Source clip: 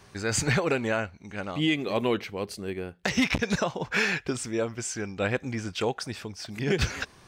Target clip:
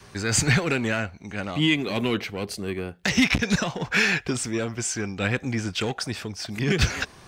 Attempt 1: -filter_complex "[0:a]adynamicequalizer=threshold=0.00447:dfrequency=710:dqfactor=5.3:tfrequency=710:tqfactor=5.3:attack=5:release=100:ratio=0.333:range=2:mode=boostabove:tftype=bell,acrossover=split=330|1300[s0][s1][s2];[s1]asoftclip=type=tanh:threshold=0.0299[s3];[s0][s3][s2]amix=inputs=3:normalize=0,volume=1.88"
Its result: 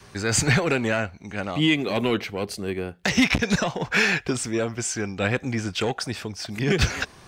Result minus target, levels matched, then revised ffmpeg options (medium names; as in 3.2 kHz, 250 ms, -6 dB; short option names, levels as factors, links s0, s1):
saturation: distortion -5 dB
-filter_complex "[0:a]adynamicequalizer=threshold=0.00447:dfrequency=710:dqfactor=5.3:tfrequency=710:tqfactor=5.3:attack=5:release=100:ratio=0.333:range=2:mode=boostabove:tftype=bell,acrossover=split=330|1300[s0][s1][s2];[s1]asoftclip=type=tanh:threshold=0.0119[s3];[s0][s3][s2]amix=inputs=3:normalize=0,volume=1.88"